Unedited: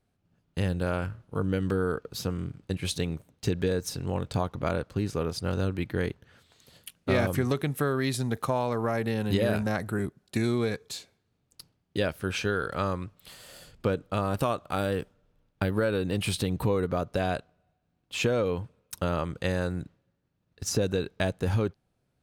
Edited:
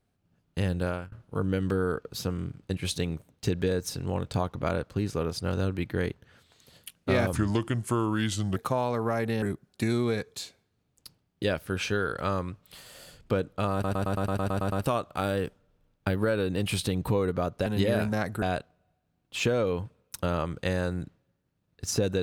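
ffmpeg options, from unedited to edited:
-filter_complex "[0:a]asplit=16[s0][s1][s2][s3][s4][s5][s6][s7][s8][s9][s10][s11][s12][s13][s14][s15];[s0]atrim=end=1.12,asetpts=PTS-STARTPTS,afade=t=out:st=0.85:d=0.27:silence=0.0668344[s16];[s1]atrim=start=1.12:end=7.334,asetpts=PTS-STARTPTS,afade=t=in:d=0.004:c=hsin:silence=0.0668344[s17];[s2]atrim=start=7.33:end=8.34,asetpts=PTS-STARTPTS,asetrate=36162,aresample=44100,atrim=end_sample=54318,asetpts=PTS-STARTPTS[s18];[s3]atrim=start=8.336:end=9.202[s19];[s4]atrim=start=9.958:end=14.382[s20];[s5]atrim=start=14.268:end=14.382[s21];[s6]atrim=start=14.268:end=14.382[s22];[s7]atrim=start=14.268:end=14.382[s23];[s8]atrim=start=14.268:end=14.382[s24];[s9]atrim=start=14.268:end=14.382[s25];[s10]atrim=start=14.268:end=14.382[s26];[s11]atrim=start=14.268:end=14.382[s27];[s12]atrim=start=14.268:end=14.382[s28];[s13]atrim=start=14.268:end=17.212[s29];[s14]atrim=start=9.198:end=9.962[s30];[s15]atrim=start=17.208[s31];[s16][s17]concat=n=2:v=0:a=1[s32];[s32][s18]acrossfade=d=0.004:c1=hsin:c2=hsin[s33];[s33][s19]acrossfade=d=0.004:c1=hsin:c2=hsin[s34];[s34][s20]acrossfade=d=0.004:c1=hsin:c2=hsin[s35];[s35][s21]acrossfade=d=0.004:c1=hsin:c2=hsin[s36];[s36][s22]acrossfade=d=0.004:c1=hsin:c2=hsin[s37];[s37][s23]acrossfade=d=0.004:c1=hsin:c2=hsin[s38];[s38][s24]acrossfade=d=0.004:c1=hsin:c2=hsin[s39];[s39][s25]acrossfade=d=0.004:c1=hsin:c2=hsin[s40];[s40][s26]acrossfade=d=0.004:c1=hsin:c2=hsin[s41];[s41][s27]acrossfade=d=0.004:c1=hsin:c2=hsin[s42];[s42][s28]acrossfade=d=0.004:c1=hsin:c2=hsin[s43];[s43][s29]acrossfade=d=0.004:c1=hsin:c2=hsin[s44];[s44][s30]acrossfade=d=0.004:c1=hsin:c2=hsin[s45];[s45][s31]acrossfade=d=0.004:c1=hsin:c2=hsin"

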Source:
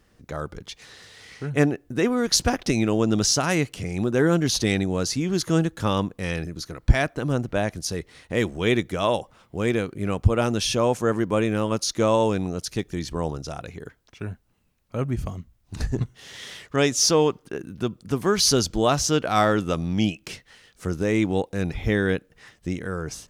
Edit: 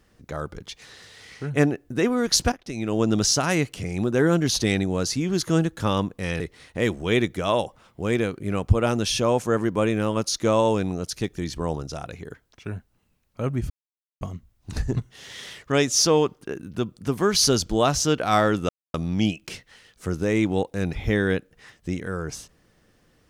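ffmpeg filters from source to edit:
-filter_complex "[0:a]asplit=5[s0][s1][s2][s3][s4];[s0]atrim=end=2.52,asetpts=PTS-STARTPTS,afade=t=out:st=2.516:d=0.004:c=hsin:silence=0.158489[s5];[s1]atrim=start=2.52:end=6.402,asetpts=PTS-STARTPTS,afade=t=in:d=0.49:c=qua:silence=0.158489[s6];[s2]atrim=start=7.948:end=15.25,asetpts=PTS-STARTPTS,afade=t=out:st=7.298:d=0.004:c=hsin,apad=pad_dur=0.51[s7];[s3]atrim=start=15.25:end=19.73,asetpts=PTS-STARTPTS,afade=t=in:d=0.004:c=hsin,afade=t=out:st=4.476:d=0.004:c=hsin,apad=pad_dur=0.25[s8];[s4]atrim=start=19.73,asetpts=PTS-STARTPTS,afade=t=in:d=0.004:c=hsin[s9];[s5][s6]concat=n=2:v=0:a=1[s10];[s7][s8][s9]concat=n=3:v=0:a=1[s11];[s10][s11]acrossfade=d=0.004:c1=hsin:c2=hsin"

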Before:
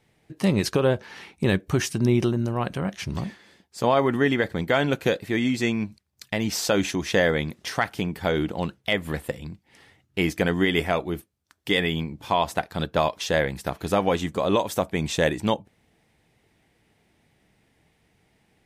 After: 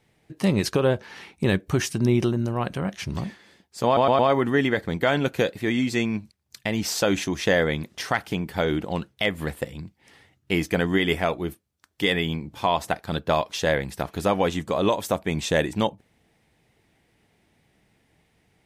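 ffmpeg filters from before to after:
-filter_complex "[0:a]asplit=4[s0][s1][s2][s3];[s0]atrim=end=3.972[s4];[s1]atrim=start=3.858:end=3.972[s5];[s2]atrim=start=3.858:end=3.972[s6];[s3]atrim=start=3.858[s7];[s4][s5]acrossfade=d=0.004:c1=hsin:c2=hsin[s8];[s8][s6]acrossfade=d=0.004:c1=hsin:c2=hsin[s9];[s9][s7]acrossfade=d=0.004:c1=hsin:c2=hsin"

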